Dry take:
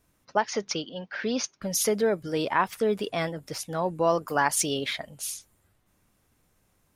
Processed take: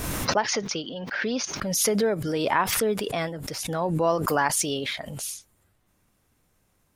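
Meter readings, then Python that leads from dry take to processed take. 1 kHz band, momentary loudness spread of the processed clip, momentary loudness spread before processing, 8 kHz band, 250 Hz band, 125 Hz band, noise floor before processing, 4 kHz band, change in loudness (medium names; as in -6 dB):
+1.0 dB, 9 LU, 9 LU, +3.0 dB, +2.5 dB, +5.0 dB, -69 dBFS, +3.0 dB, +2.0 dB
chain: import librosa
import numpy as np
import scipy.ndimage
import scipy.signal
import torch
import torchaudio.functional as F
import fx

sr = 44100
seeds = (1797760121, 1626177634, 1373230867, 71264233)

y = fx.pre_swell(x, sr, db_per_s=33.0)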